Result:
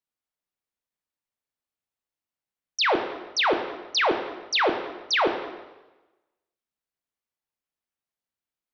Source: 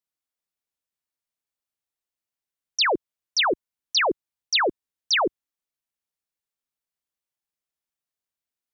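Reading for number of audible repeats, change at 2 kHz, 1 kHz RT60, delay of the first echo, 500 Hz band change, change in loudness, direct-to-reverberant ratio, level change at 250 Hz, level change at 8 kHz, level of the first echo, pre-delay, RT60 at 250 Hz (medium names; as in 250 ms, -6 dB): no echo, -0.5 dB, 1.1 s, no echo, +1.5 dB, -1.0 dB, 5.5 dB, +1.5 dB, no reading, no echo, 8 ms, 1.1 s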